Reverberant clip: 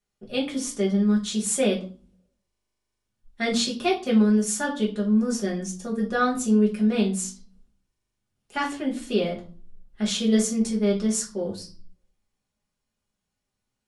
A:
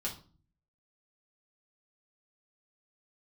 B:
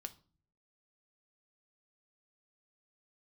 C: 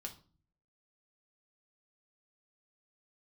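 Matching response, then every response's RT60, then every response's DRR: A; 0.40, 0.40, 0.40 s; -4.5, 8.0, 1.5 dB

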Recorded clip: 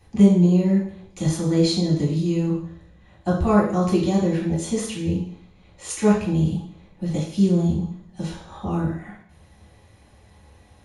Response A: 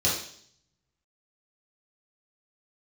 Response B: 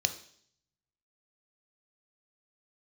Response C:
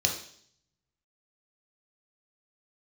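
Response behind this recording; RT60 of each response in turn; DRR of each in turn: A; 0.60, 0.60, 0.60 s; -7.5, 8.0, 1.0 dB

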